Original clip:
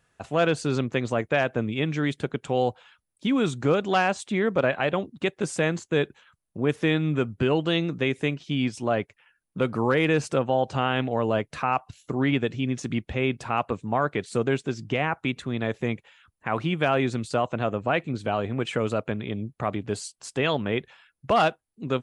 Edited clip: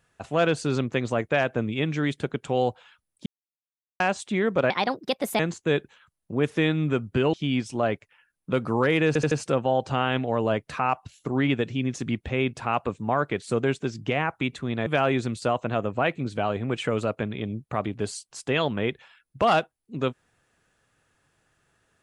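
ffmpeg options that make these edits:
ffmpeg -i in.wav -filter_complex "[0:a]asplit=10[link_01][link_02][link_03][link_04][link_05][link_06][link_07][link_08][link_09][link_10];[link_01]atrim=end=3.26,asetpts=PTS-STARTPTS,afade=type=out:start_time=3.256:duration=0.004:curve=hsin[link_11];[link_02]atrim=start=3.26:end=4,asetpts=PTS-STARTPTS,volume=0[link_12];[link_03]atrim=start=4:end=4.704,asetpts=PTS-STARTPTS,afade=type=in:duration=0.004:curve=hsin[link_13];[link_04]atrim=start=4.7:end=5.65,asetpts=PTS-STARTPTS,asetrate=60417,aresample=44100,atrim=end_sample=30580,asetpts=PTS-STARTPTS[link_14];[link_05]atrim=start=5.646:end=7.592[link_15];[link_06]atrim=start=8.408:end=10.232[link_16];[link_07]atrim=start=10.148:end=10.232[link_17];[link_08]atrim=start=10.148:end=10.232[link_18];[link_09]atrim=start=10.148:end=15.702[link_19];[link_10]atrim=start=16.748[link_20];[link_11][link_12][link_13]concat=n=3:v=0:a=1[link_21];[link_21][link_14]acrossfade=duration=0.004:curve1=hsin:curve2=hsin[link_22];[link_22][link_15]acrossfade=duration=0.004:curve1=hsin:curve2=hsin[link_23];[link_23][link_16]acrossfade=duration=0.004:curve1=hsin:curve2=hsin[link_24];[link_24][link_17]acrossfade=duration=0.004:curve1=hsin:curve2=hsin[link_25];[link_25][link_18]acrossfade=duration=0.004:curve1=hsin:curve2=hsin[link_26];[link_26][link_19]acrossfade=duration=0.004:curve1=hsin:curve2=hsin[link_27];[link_27][link_20]acrossfade=duration=0.004:curve1=hsin:curve2=hsin" out.wav

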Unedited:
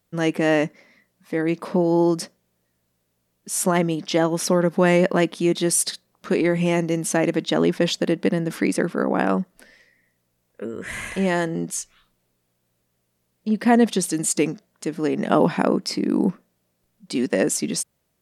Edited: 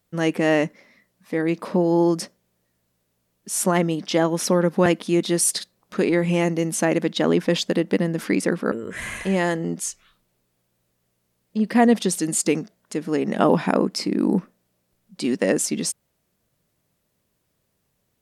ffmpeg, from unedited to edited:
ffmpeg -i in.wav -filter_complex "[0:a]asplit=3[link_01][link_02][link_03];[link_01]atrim=end=4.862[link_04];[link_02]atrim=start=5.178:end=9.042[link_05];[link_03]atrim=start=10.628[link_06];[link_04][link_05]acrossfade=duration=0.004:curve1=hsin:curve2=hsin[link_07];[link_07][link_06]acrossfade=duration=0.004:curve1=hsin:curve2=hsin" out.wav

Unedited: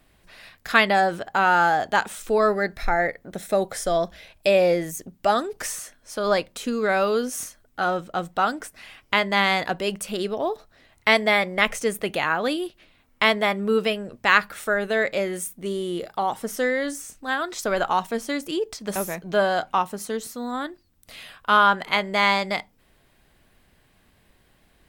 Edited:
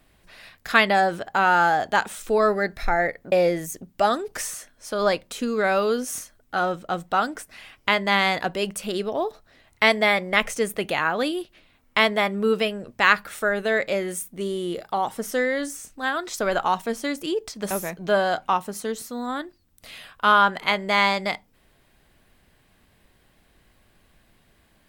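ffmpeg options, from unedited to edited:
ffmpeg -i in.wav -filter_complex "[0:a]asplit=2[link_01][link_02];[link_01]atrim=end=3.322[link_03];[link_02]atrim=start=4.568[link_04];[link_03][link_04]acrossfade=duration=0.004:curve1=hsin:curve2=hsin" out.wav

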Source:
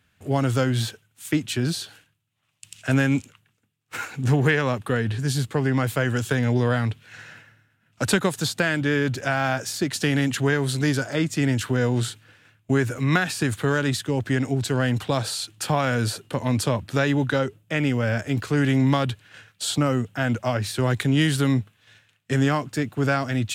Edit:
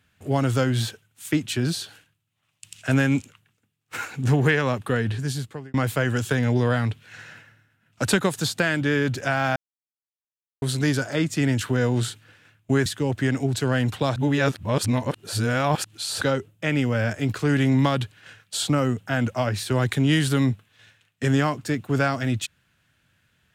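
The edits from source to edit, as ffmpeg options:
ffmpeg -i in.wav -filter_complex "[0:a]asplit=7[link_01][link_02][link_03][link_04][link_05][link_06][link_07];[link_01]atrim=end=5.74,asetpts=PTS-STARTPTS,afade=type=out:start_time=5.1:duration=0.64[link_08];[link_02]atrim=start=5.74:end=9.56,asetpts=PTS-STARTPTS,afade=type=in:duration=0.004:curve=hsin,afade=type=out:start_time=3.816:duration=0.004:curve=hsin[link_09];[link_03]atrim=start=9.56:end=10.62,asetpts=PTS-STARTPTS,volume=0[link_10];[link_04]atrim=start=10.62:end=12.862,asetpts=PTS-STARTPTS,afade=type=in:duration=0.004:curve=hsin[link_11];[link_05]atrim=start=13.938:end=15.242[link_12];[link_06]atrim=start=15.238:end=17.292,asetpts=PTS-STARTPTS,areverse[link_13];[link_07]atrim=start=17.288[link_14];[link_08][link_09][link_10][link_11]concat=n=4:v=0:a=1[link_15];[link_15][link_12]acrossfade=duration=0.004:curve1=hsin:curve2=hsin[link_16];[link_16][link_13]acrossfade=duration=0.004:curve1=hsin:curve2=hsin[link_17];[link_17][link_14]acrossfade=duration=0.004:curve1=hsin:curve2=hsin" out.wav

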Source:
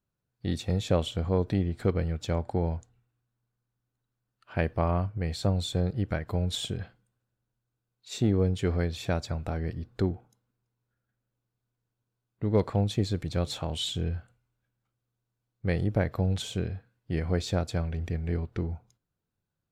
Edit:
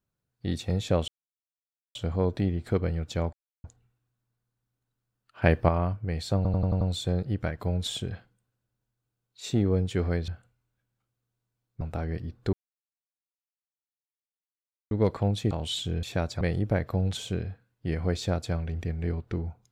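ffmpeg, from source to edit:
ffmpeg -i in.wav -filter_complex "[0:a]asplit=18[link_01][link_02][link_03][link_04][link_05][link_06][link_07][link_08][link_09][link_10][link_11][link_12][link_13][link_14][link_15][link_16][link_17][link_18];[link_01]atrim=end=1.08,asetpts=PTS-STARTPTS,afade=type=out:start_time=1.076:duration=0.004:curve=hsin,apad=pad_dur=0.87[link_19];[link_02]atrim=start=1.08:end=2.46,asetpts=PTS-STARTPTS,afade=type=in:duration=0.004:curve=hsin,afade=type=out:start_time=1.376:duration=0.004:curve=hsin[link_20];[link_03]atrim=start=2.46:end=2.77,asetpts=PTS-STARTPTS,volume=0[link_21];[link_04]atrim=start=2.77:end=4.552,asetpts=PTS-STARTPTS,afade=type=in:duration=0.004:curve=hsin[link_22];[link_05]atrim=start=4.548:end=4.822,asetpts=PTS-STARTPTS,volume=6dB[link_23];[link_06]atrim=start=4.818:end=5.582[link_24];[link_07]atrim=start=5.488:end=5.582[link_25];[link_08]atrim=start=5.488:end=5.582[link_26];[link_09]atrim=start=5.488:end=5.582[link_27];[link_10]atrim=start=5.488:end=5.582[link_28];[link_11]atrim=start=5.488:end=8.962[link_29];[link_12]atrim=start=14.128:end=15.662[link_30];[link_13]atrim=start=9.338:end=10.06,asetpts=PTS-STARTPTS,afade=type=out:start_time=0.718:duration=0.004:curve=hsin[link_31];[link_14]atrim=start=10.06:end=12.44,asetpts=PTS-STARTPTS,volume=0[link_32];[link_15]atrim=start=12.44:end=13.042,asetpts=PTS-STARTPTS,afade=type=in:duration=0.004:curve=hsin[link_33];[link_16]atrim=start=13.608:end=14.132[link_34];[link_17]atrim=start=8.958:end=9.342[link_35];[link_18]atrim=start=15.658[link_36];[link_19][link_20][link_21][link_22]concat=n=4:v=0:a=1[link_37];[link_37][link_23]acrossfade=duration=0.004:curve1=hsin:curve2=hsin[link_38];[link_38][link_24]acrossfade=duration=0.004:curve1=hsin:curve2=hsin[link_39];[link_39][link_25]acrossfade=duration=0.004:curve1=hsin:curve2=hsin[link_40];[link_40][link_26]acrossfade=duration=0.004:curve1=hsin:curve2=hsin[link_41];[link_41][link_27]acrossfade=duration=0.004:curve1=hsin:curve2=hsin[link_42];[link_42][link_28]acrossfade=duration=0.004:curve1=hsin:curve2=hsin[link_43];[link_43][link_29]acrossfade=duration=0.004:curve1=hsin:curve2=hsin[link_44];[link_44][link_30]acrossfade=duration=0.004:curve1=hsin:curve2=hsin[link_45];[link_31][link_32][link_33]concat=n=3:v=0:a=1[link_46];[link_45][link_46]acrossfade=duration=0.004:curve1=hsin:curve2=hsin[link_47];[link_47][link_34]acrossfade=duration=0.004:curve1=hsin:curve2=hsin[link_48];[link_48][link_35]acrossfade=duration=0.004:curve1=hsin:curve2=hsin[link_49];[link_49][link_36]acrossfade=duration=0.004:curve1=hsin:curve2=hsin" out.wav

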